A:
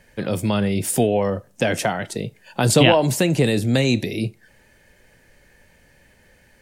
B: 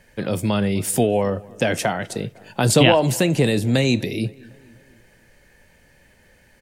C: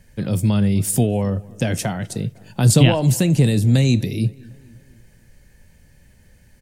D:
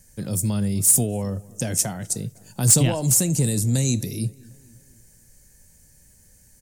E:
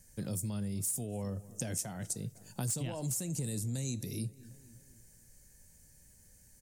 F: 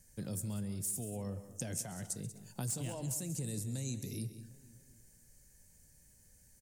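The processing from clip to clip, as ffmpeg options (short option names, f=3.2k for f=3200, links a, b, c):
-filter_complex "[0:a]asplit=2[a][b];[b]adelay=252,lowpass=f=2.7k:p=1,volume=-23dB,asplit=2[c][d];[d]adelay=252,lowpass=f=2.7k:p=1,volume=0.55,asplit=2[e][f];[f]adelay=252,lowpass=f=2.7k:p=1,volume=0.55,asplit=2[g][h];[h]adelay=252,lowpass=f=2.7k:p=1,volume=0.55[i];[a][c][e][g][i]amix=inputs=5:normalize=0"
-af "bass=f=250:g=14,treble=f=4k:g=8,volume=-6dB"
-af "highshelf=f=4.7k:t=q:w=1.5:g=13.5,asoftclip=type=tanh:threshold=-1.5dB,volume=-6dB"
-af "acompressor=threshold=-27dB:ratio=6,volume=-6.5dB"
-af "aecho=1:1:134|188:0.141|0.2,volume=-3dB"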